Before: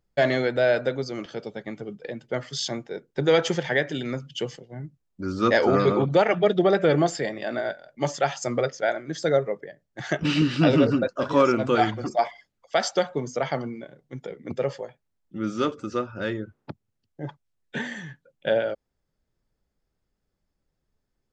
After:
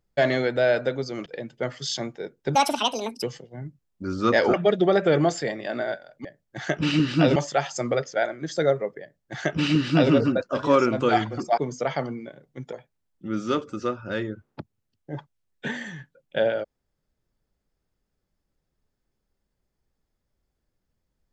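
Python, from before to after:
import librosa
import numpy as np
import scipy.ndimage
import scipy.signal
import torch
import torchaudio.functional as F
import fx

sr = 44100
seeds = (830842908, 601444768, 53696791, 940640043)

y = fx.edit(x, sr, fx.cut(start_s=1.26, length_s=0.71),
    fx.speed_span(start_s=3.26, length_s=1.15, speed=1.7),
    fx.cut(start_s=5.72, length_s=0.59),
    fx.duplicate(start_s=9.67, length_s=1.11, to_s=8.02),
    fx.cut(start_s=12.24, length_s=0.89),
    fx.cut(start_s=14.28, length_s=0.55), tone=tone)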